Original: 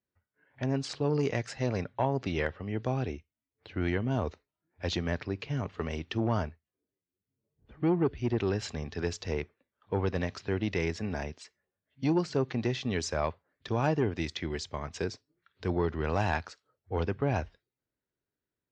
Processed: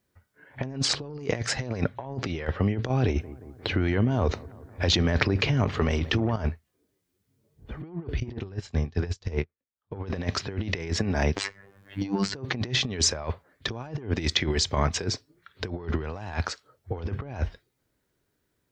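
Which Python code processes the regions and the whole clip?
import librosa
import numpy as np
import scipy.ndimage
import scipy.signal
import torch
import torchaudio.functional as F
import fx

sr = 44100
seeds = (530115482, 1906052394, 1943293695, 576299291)

y = fx.chain(x, sr, fx.over_compress(threshold_db=-37.0, ratio=-1.0),
    fx.echo_bbd(ms=177, stages=2048, feedback_pct=67, wet_db=-21.5), at=(2.89, 6.37))
y = fx.chain(y, sr, fx.low_shelf(hz=120.0, db=10.5),
    fx.doubler(ms=22.0, db=-10.5),
    fx.upward_expand(threshold_db=-47.0, expansion=2.5), at=(8.2, 9.96))
y = fx.chain(y, sr, fx.notch(hz=630.0, q=5.6),
    fx.robotise(hz=98.6),
    fx.band_squash(depth_pct=70), at=(11.36, 12.35))
y = fx.low_shelf(y, sr, hz=93.0, db=4.0)
y = fx.notch(y, sr, hz=2700.0, q=28.0)
y = fx.over_compress(y, sr, threshold_db=-35.0, ratio=-0.5)
y = y * 10.0 ** (9.0 / 20.0)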